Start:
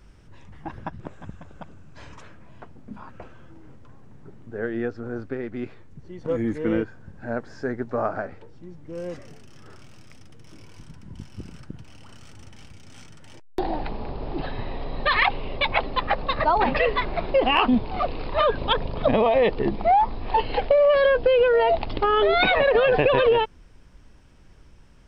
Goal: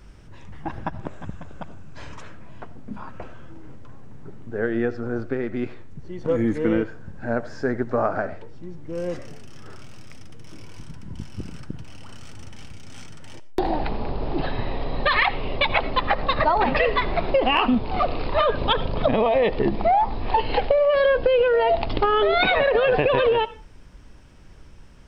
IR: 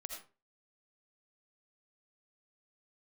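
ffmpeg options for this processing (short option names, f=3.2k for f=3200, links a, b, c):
-filter_complex "[0:a]acompressor=threshold=-20dB:ratio=6,asplit=2[a][b];[1:a]atrim=start_sample=2205[c];[b][c]afir=irnorm=-1:irlink=0,volume=-8dB[d];[a][d]amix=inputs=2:normalize=0,volume=2.5dB"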